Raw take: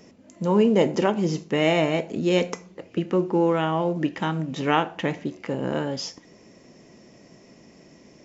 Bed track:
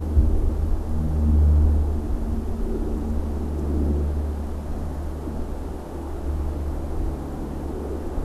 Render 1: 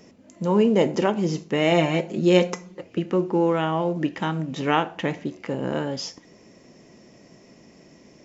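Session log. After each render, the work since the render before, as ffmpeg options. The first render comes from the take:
-filter_complex "[0:a]asettb=1/sr,asplit=3[a][b][c];[a]atrim=end=1.714[d];[b]atrim=start=1.71:end=2.83,asetpts=PTS-STARTPTS,afade=t=in:d=0.004:c=qsin,afade=t=out:st=1.116:d=0.004:c=qsin,aecho=1:1:5.6:0.66,atrim=end_sample=49392[e];[c]atrim=start=2.826[f];[d][e]acrossfade=d=0.004:c1=hsin:c2=qsin[g];[g][f]acrossfade=d=0.004:c1=qsin:c2=hsin"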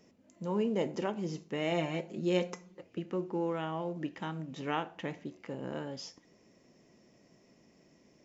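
-af "volume=-12.5dB"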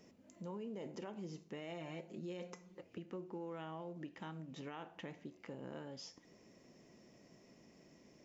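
-af "alimiter=level_in=3dB:limit=-24dB:level=0:latency=1:release=37,volume=-3dB,acompressor=threshold=-52dB:ratio=2"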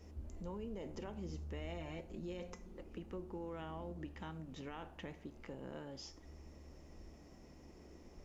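-filter_complex "[1:a]volume=-30dB[a];[0:a][a]amix=inputs=2:normalize=0"

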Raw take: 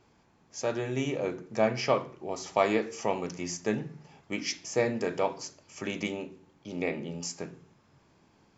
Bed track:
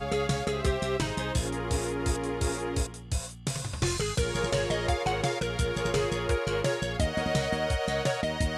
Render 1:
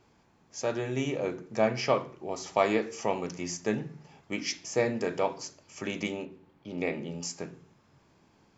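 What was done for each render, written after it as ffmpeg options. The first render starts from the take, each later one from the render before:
-filter_complex "[0:a]asettb=1/sr,asplit=3[a][b][c];[a]atrim=end=6.254[d];[b]atrim=start=6.25:end=6.78,asetpts=PTS-STARTPTS,afade=t=in:d=0.004:c=qsin,afade=t=out:st=0.526:d=0.004:c=qsin,equalizer=f=6.6k:w=1.3:g=-11.5[e];[c]atrim=start=6.776[f];[d][e]acrossfade=d=0.004:c1=hsin:c2=qsin[g];[g][f]acrossfade=d=0.004:c1=qsin:c2=hsin"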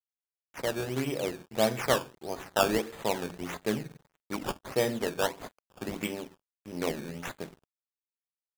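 -af "acrusher=samples=15:mix=1:aa=0.000001:lfo=1:lforange=15:lforate=1.6,aeval=exprs='sgn(val(0))*max(abs(val(0))-0.00355,0)':c=same"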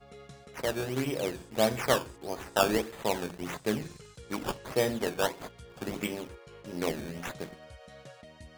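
-filter_complex "[1:a]volume=-21.5dB[a];[0:a][a]amix=inputs=2:normalize=0"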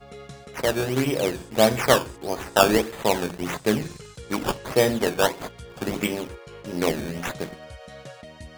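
-af "volume=8dB"

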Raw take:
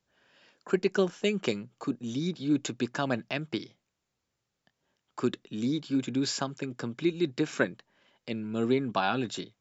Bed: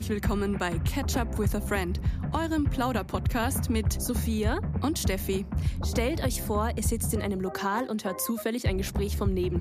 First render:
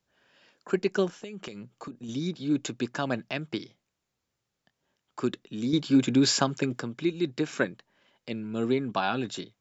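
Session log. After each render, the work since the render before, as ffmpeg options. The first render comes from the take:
-filter_complex "[0:a]asettb=1/sr,asplit=3[a][b][c];[a]atrim=end=1.094[d];[b]atrim=start=1.09:end=2.09,asetpts=PTS-STARTPTS,afade=t=in:d=0.004:c=qsin,afade=t=out:st=0.996:d=0.004:c=qsin,acompressor=threshold=-35dB:ratio=12:attack=3.2:release=140:knee=1:detection=peak[e];[c]atrim=start=2.086[f];[d][e]acrossfade=d=0.004:c1=hsin:c2=qsin[g];[g][f]acrossfade=d=0.004:c1=qsin:c2=hsin,asettb=1/sr,asplit=3[h][i][j];[h]atrim=end=5.734[k];[i]atrim=start=5.73:end=6.8,asetpts=PTS-STARTPTS,afade=t=in:d=0.004:c=qsin,afade=t=out:st=1.066:d=0.004:c=qsin,acontrast=89[l];[j]atrim=start=6.796[m];[k][l]acrossfade=d=0.004:c1=hsin:c2=qsin[n];[n][m]acrossfade=d=0.004:c1=qsin:c2=hsin"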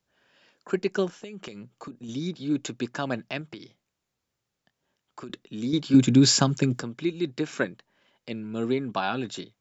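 -filter_complex "[0:a]asettb=1/sr,asplit=3[a][b][c];[a]atrim=end=3.414[d];[b]atrim=start=3.41:end=5.3,asetpts=PTS-STARTPTS,afade=t=in:d=0.004:c=qsin,afade=t=out:st=1.886:d=0.004:c=qsin,acompressor=threshold=-36dB:ratio=6:attack=3.2:release=140:knee=1:detection=peak[e];[c]atrim=start=5.296[f];[d][e]acrossfade=d=0.004:c1=hsin:c2=qsin[g];[g][f]acrossfade=d=0.004:c1=qsin:c2=hsin,asettb=1/sr,asplit=3[h][i][j];[h]atrim=end=5.944[k];[i]atrim=start=5.94:end=6.83,asetpts=PTS-STARTPTS,afade=t=in:d=0.004:c=qsin,afade=t=out:st=0.886:d=0.004:c=qsin,bass=f=250:g=10,treble=f=4k:g=6[l];[j]atrim=start=6.826[m];[k][l]acrossfade=d=0.004:c1=hsin:c2=qsin[n];[n][m]acrossfade=d=0.004:c1=qsin:c2=hsin"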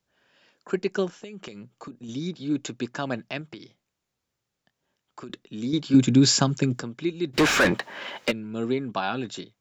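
-filter_complex "[0:a]asplit=3[a][b][c];[a]afade=t=out:st=7.33:d=0.02[d];[b]asplit=2[e][f];[f]highpass=f=720:p=1,volume=39dB,asoftclip=type=tanh:threshold=-10.5dB[g];[e][g]amix=inputs=2:normalize=0,lowpass=f=2.4k:p=1,volume=-6dB,afade=t=in:st=7.33:d=0.02,afade=t=out:st=8.3:d=0.02[h];[c]afade=t=in:st=8.3:d=0.02[i];[d][h][i]amix=inputs=3:normalize=0"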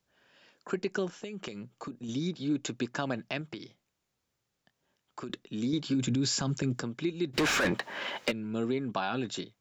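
-af "alimiter=limit=-17dB:level=0:latency=1:release=48,acompressor=threshold=-29dB:ratio=2"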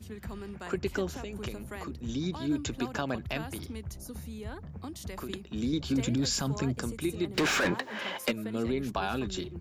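-filter_complex "[1:a]volume=-13.5dB[a];[0:a][a]amix=inputs=2:normalize=0"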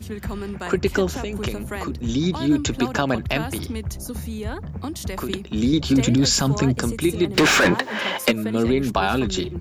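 -af "volume=11dB"

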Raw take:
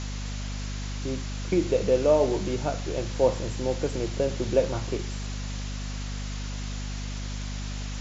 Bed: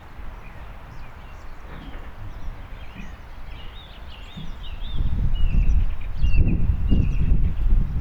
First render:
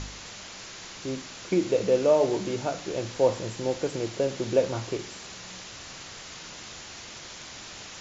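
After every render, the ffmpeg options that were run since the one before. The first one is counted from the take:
-af "bandreject=f=50:t=h:w=4,bandreject=f=100:t=h:w=4,bandreject=f=150:t=h:w=4,bandreject=f=200:t=h:w=4,bandreject=f=250:t=h:w=4,bandreject=f=300:t=h:w=4"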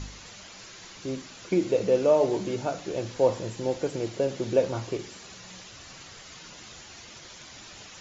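-af "afftdn=nr=7:nf=-43"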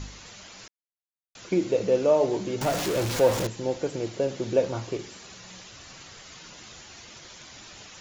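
-filter_complex "[0:a]asettb=1/sr,asplit=3[a][b][c];[a]atrim=end=2.614[d];[b]atrim=start=2.61:end=3.47,asetpts=PTS-STARTPTS,afade=t=in:d=0.004:c=qsin,afade=t=out:st=0.856:d=0.004:c=qsin,aeval=exprs='val(0)+0.5*0.0562*sgn(val(0))':c=same[e];[c]atrim=start=3.466[f];[d][e]acrossfade=d=0.004:c1=hsin:c2=qsin[g];[g][f]acrossfade=d=0.004:c1=qsin:c2=hsin,asplit=3[h][i][j];[h]atrim=end=0.68,asetpts=PTS-STARTPTS,afade=t=out:st=0.676:d=0.004:c=hsin[k];[i]atrim=start=0.68:end=1.35,asetpts=PTS-STARTPTS,volume=0[l];[j]atrim=start=1.35,asetpts=PTS-STARTPTS,afade=t=in:d=0.004:c=hsin[m];[k][l][m]concat=n=3:v=0:a=1"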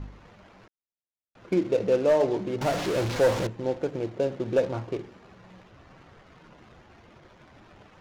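-af "adynamicsmooth=sensitivity=7:basefreq=900,volume=15dB,asoftclip=hard,volume=-15dB"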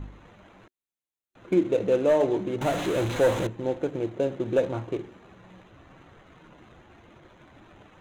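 -af "superequalizer=6b=1.41:14b=0.316"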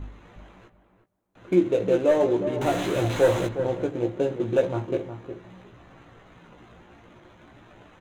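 -filter_complex "[0:a]asplit=2[a][b];[b]adelay=17,volume=-5dB[c];[a][c]amix=inputs=2:normalize=0,asplit=2[d][e];[e]adelay=362,lowpass=f=1.3k:p=1,volume=-9dB,asplit=2[f][g];[g]adelay=362,lowpass=f=1.3k:p=1,volume=0.16[h];[d][f][h]amix=inputs=3:normalize=0"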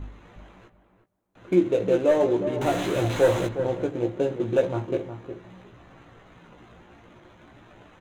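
-af anull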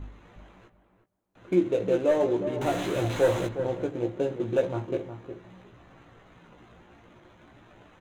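-af "volume=-3dB"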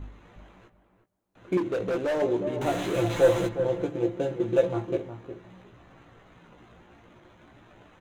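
-filter_complex "[0:a]asettb=1/sr,asplit=3[a][b][c];[a]atrim=end=1.574[d];[b]atrim=start=1.57:end=2.22,asetpts=PTS-STARTPTS,afade=t=in:d=0.004:c=qsin,afade=t=out:st=0.646:d=0.004:c=qsin,asoftclip=type=hard:threshold=-24dB[e];[c]atrim=start=2.216[f];[d][e]acrossfade=d=0.004:c1=hsin:c2=qsin[g];[g][f]acrossfade=d=0.004:c1=qsin:c2=hsin,asettb=1/sr,asplit=3[h][i][j];[h]atrim=end=2.934[k];[i]atrim=start=2.93:end=4.96,asetpts=PTS-STARTPTS,afade=t=in:d=0.004:c=qsin,afade=t=out:st=2.026:d=0.004:c=qsin,aecho=1:1:5.9:0.57,atrim=end_sample=89523[l];[j]atrim=start=4.956[m];[k][l]acrossfade=d=0.004:c1=hsin:c2=qsin[n];[n][m]acrossfade=d=0.004:c1=qsin:c2=hsin"

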